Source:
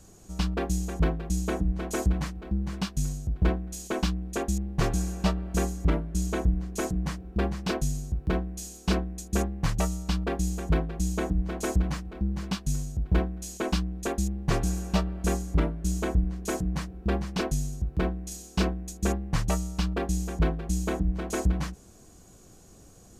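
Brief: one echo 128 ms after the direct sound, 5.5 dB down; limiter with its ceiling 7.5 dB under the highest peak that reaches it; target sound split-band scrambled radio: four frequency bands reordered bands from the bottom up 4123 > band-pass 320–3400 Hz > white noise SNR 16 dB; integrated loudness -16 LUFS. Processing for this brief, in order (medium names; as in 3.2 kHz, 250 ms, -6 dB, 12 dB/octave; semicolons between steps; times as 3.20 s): peak limiter -21 dBFS; delay 128 ms -5.5 dB; four frequency bands reordered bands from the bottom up 4123; band-pass 320–3400 Hz; white noise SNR 16 dB; trim +11.5 dB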